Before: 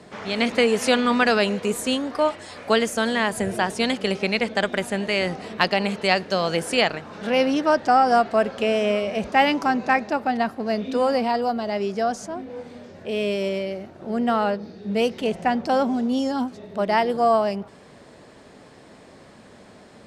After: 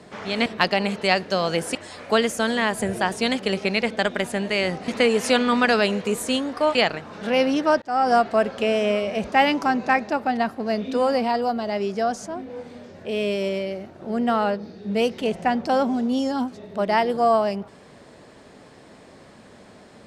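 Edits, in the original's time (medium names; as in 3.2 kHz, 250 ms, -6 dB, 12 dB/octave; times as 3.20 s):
0.46–2.33 s: swap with 5.46–6.75 s
7.82–8.09 s: fade in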